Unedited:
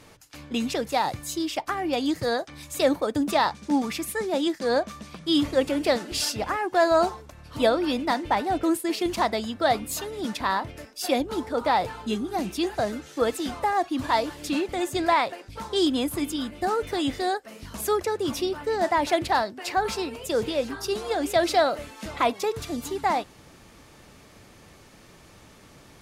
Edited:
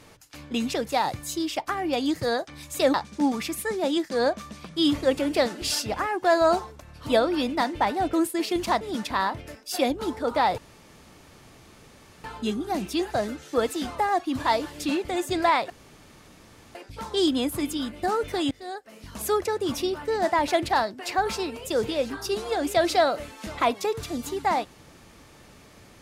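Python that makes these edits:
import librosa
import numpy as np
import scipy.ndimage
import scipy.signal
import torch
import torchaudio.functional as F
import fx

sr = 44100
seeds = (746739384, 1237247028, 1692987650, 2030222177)

y = fx.edit(x, sr, fx.cut(start_s=2.94, length_s=0.5),
    fx.cut(start_s=9.31, length_s=0.8),
    fx.insert_room_tone(at_s=11.88, length_s=1.66),
    fx.insert_room_tone(at_s=15.34, length_s=1.05),
    fx.fade_in_from(start_s=17.1, length_s=0.74, floor_db=-21.0), tone=tone)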